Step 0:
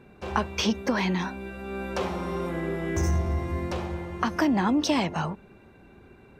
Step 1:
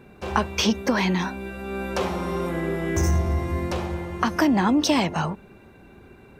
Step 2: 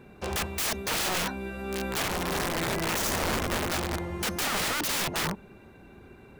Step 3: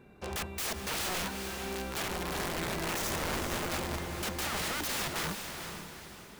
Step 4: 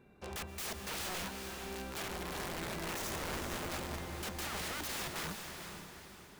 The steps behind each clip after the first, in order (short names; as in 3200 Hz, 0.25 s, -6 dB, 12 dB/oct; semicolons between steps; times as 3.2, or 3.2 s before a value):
high shelf 8900 Hz +7 dB; gain +3.5 dB
wrapped overs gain 21.5 dB; gain -2 dB
diffused feedback echo 0.455 s, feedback 43%, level -6.5 dB; gain -6 dB
reverb RT60 3.3 s, pre-delay 0.108 s, DRR 11.5 dB; gain -6 dB